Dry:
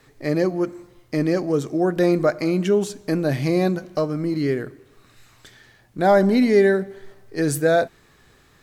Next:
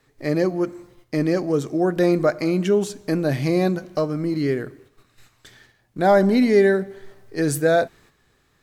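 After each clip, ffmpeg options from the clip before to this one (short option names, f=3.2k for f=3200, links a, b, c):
-af "agate=range=-8dB:threshold=-50dB:ratio=16:detection=peak"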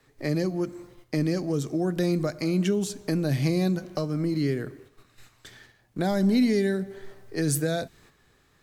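-filter_complex "[0:a]acrossover=split=240|3000[a][b][c];[b]acompressor=threshold=-29dB:ratio=6[d];[a][d][c]amix=inputs=3:normalize=0"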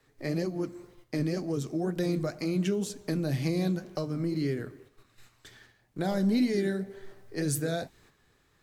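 -af "flanger=delay=2:depth=9.9:regen=-64:speed=2:shape=sinusoidal"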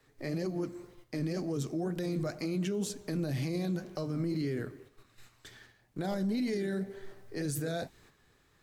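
-af "alimiter=level_in=2dB:limit=-24dB:level=0:latency=1:release=16,volume=-2dB"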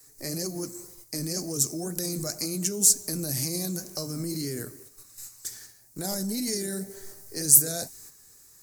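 -af "aexciter=amount=7.4:drive=9.5:freq=5k"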